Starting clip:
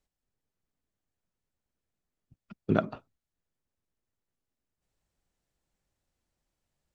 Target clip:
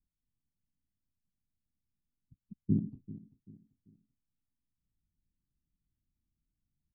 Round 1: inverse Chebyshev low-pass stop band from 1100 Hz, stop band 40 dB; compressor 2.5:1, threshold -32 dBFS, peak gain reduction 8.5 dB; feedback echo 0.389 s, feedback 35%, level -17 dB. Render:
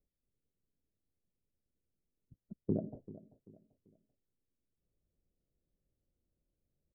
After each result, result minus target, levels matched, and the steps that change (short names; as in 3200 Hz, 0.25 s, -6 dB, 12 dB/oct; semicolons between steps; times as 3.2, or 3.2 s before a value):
500 Hz band +13.5 dB; compressor: peak gain reduction +8.5 dB
change: inverse Chebyshev low-pass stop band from 550 Hz, stop band 40 dB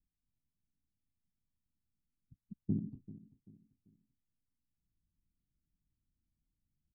compressor: peak gain reduction +7 dB
remove: compressor 2.5:1, threshold -32 dBFS, peak gain reduction 7 dB